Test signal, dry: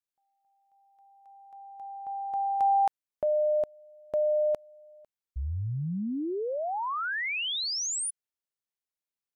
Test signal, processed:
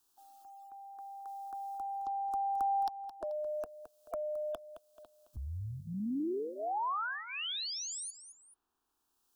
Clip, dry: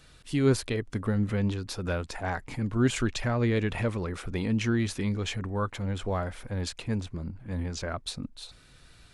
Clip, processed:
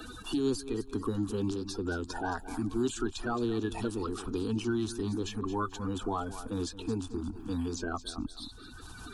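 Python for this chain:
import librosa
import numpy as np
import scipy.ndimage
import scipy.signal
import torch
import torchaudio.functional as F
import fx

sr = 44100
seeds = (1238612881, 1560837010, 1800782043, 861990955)

y = fx.spec_quant(x, sr, step_db=30)
y = fx.fixed_phaser(y, sr, hz=560.0, stages=6)
y = fx.echo_feedback(y, sr, ms=217, feedback_pct=23, wet_db=-15.5)
y = fx.band_squash(y, sr, depth_pct=70)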